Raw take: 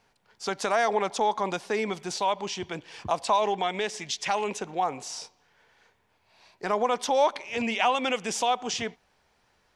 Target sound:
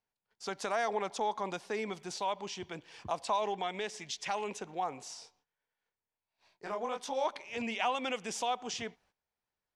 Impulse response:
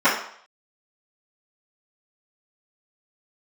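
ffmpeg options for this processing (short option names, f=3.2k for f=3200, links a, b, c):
-filter_complex "[0:a]agate=range=-17dB:threshold=-58dB:ratio=16:detection=peak,asplit=3[a][b][c];[a]afade=t=out:st=5.13:d=0.02[d];[b]flanger=delay=18.5:depth=7.2:speed=1.4,afade=t=in:st=5.13:d=0.02,afade=t=out:st=7.24:d=0.02[e];[c]afade=t=in:st=7.24:d=0.02[f];[d][e][f]amix=inputs=3:normalize=0,volume=-8dB"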